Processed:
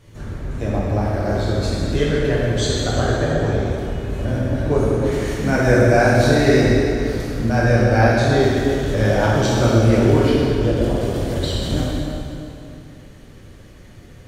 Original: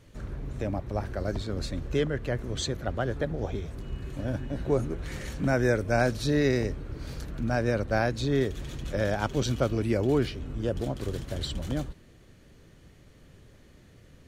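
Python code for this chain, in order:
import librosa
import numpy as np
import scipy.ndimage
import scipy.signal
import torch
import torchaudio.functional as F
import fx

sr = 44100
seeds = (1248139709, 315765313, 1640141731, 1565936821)

y = fx.rev_plate(x, sr, seeds[0], rt60_s=2.8, hf_ratio=0.8, predelay_ms=0, drr_db=-7.0)
y = y * 10.0 ** (3.5 / 20.0)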